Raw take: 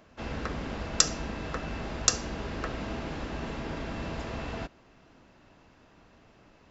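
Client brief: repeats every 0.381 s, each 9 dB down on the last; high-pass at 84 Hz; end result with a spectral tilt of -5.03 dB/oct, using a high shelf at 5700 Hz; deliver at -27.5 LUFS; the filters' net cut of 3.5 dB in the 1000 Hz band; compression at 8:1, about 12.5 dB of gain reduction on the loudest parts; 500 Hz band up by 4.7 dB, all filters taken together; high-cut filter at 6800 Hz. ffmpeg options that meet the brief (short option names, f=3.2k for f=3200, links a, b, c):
-af "highpass=84,lowpass=6.8k,equalizer=f=500:t=o:g=8,equalizer=f=1k:t=o:g=-7.5,highshelf=f=5.7k:g=-6.5,acompressor=threshold=-36dB:ratio=8,aecho=1:1:381|762|1143|1524:0.355|0.124|0.0435|0.0152,volume=13dB"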